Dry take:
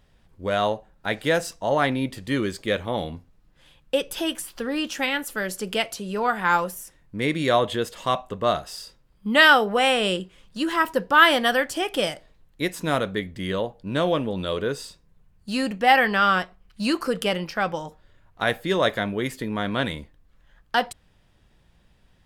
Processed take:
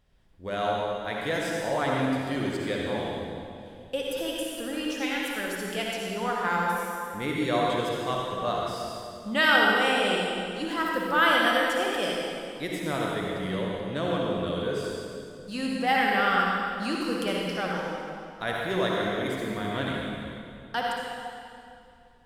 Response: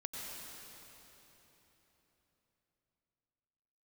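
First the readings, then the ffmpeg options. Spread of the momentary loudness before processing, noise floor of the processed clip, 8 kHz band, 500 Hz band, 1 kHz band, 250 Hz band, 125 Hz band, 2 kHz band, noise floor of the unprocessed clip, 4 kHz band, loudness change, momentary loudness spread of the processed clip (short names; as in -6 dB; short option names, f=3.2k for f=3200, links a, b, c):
13 LU, -47 dBFS, -4.5 dB, -3.5 dB, -4.0 dB, -3.0 dB, -3.0 dB, -4.0 dB, -60 dBFS, -4.0 dB, -4.0 dB, 13 LU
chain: -filter_complex "[1:a]atrim=start_sample=2205,asetrate=70560,aresample=44100[a];[0:a][a]afir=irnorm=-1:irlink=0"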